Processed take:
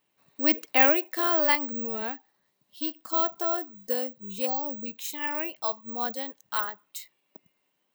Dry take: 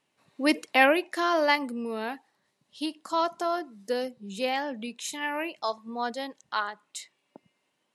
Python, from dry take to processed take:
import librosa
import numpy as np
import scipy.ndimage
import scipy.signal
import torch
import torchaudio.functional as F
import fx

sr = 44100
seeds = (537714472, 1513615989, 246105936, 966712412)

y = fx.spec_erase(x, sr, start_s=4.46, length_s=0.4, low_hz=1300.0, high_hz=4100.0)
y = (np.kron(scipy.signal.resample_poly(y, 1, 2), np.eye(2)[0]) * 2)[:len(y)]
y = F.gain(torch.from_numpy(y), -2.5).numpy()